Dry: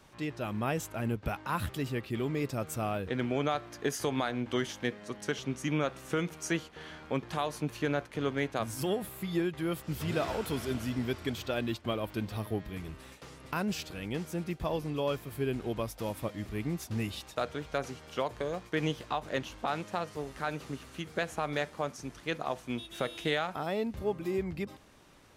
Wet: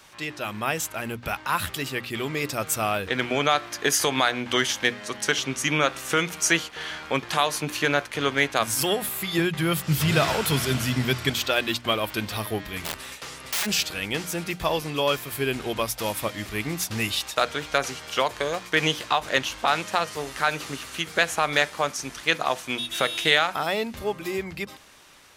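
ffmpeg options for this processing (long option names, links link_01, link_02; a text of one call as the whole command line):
ffmpeg -i in.wav -filter_complex "[0:a]asettb=1/sr,asplit=3[link_01][link_02][link_03];[link_01]atrim=end=9.384[link_04];[link_02]atrim=start=9.38:end=11.3,asetpts=PTS-STARTPTS,afade=type=in:duration=0.004:curve=qsin,afade=type=out:start_time=1.916:duration=0.004:curve=qsin,equalizer=frequency=140:width_type=o:width=0.77:gain=12.5[link_05];[link_03]atrim=start=11.296[link_06];[link_04][link_05]acrossfade=duration=0.004:curve1=hsin:curve2=qsin[link_07];[link_07][link_06]acrossfade=duration=0.004:curve1=qsin:curve2=hsin,asplit=3[link_08][link_09][link_10];[link_08]afade=type=out:start_time=12.84:duration=0.02[link_11];[link_09]aeval=exprs='(mod(63.1*val(0)+1,2)-1)/63.1':channel_layout=same,afade=type=in:start_time=12.84:duration=0.02,afade=type=out:start_time=13.65:duration=0.02[link_12];[link_10]afade=type=in:start_time=13.65:duration=0.02[link_13];[link_11][link_12][link_13]amix=inputs=3:normalize=0,tiltshelf=frequency=800:gain=-7,dynaudnorm=framelen=680:gausssize=7:maxgain=4dB,bandreject=frequency=60:width_type=h:width=6,bandreject=frequency=120:width_type=h:width=6,bandreject=frequency=180:width_type=h:width=6,bandreject=frequency=240:width_type=h:width=6,bandreject=frequency=300:width_type=h:width=6,volume=5.5dB" out.wav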